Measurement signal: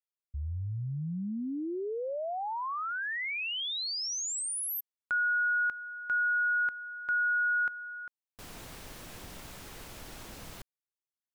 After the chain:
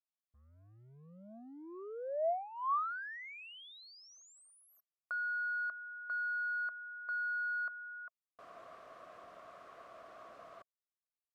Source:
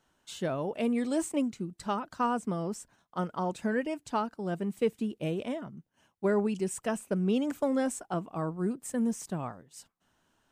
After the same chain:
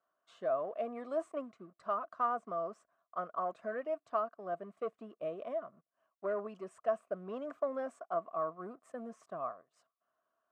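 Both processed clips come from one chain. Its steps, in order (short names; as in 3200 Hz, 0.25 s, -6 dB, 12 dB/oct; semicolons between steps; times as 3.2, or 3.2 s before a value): sample leveller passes 1; double band-pass 870 Hz, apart 0.75 oct; gain +1 dB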